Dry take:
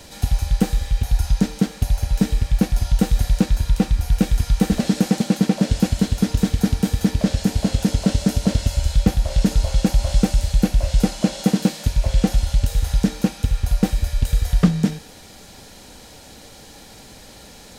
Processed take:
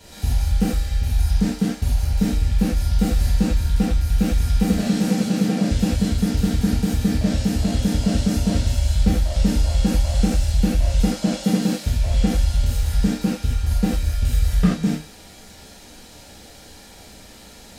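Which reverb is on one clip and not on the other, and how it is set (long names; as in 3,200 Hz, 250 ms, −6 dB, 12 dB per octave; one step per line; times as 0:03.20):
reverb whose tail is shaped and stops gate 110 ms flat, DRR −7 dB
level −8.5 dB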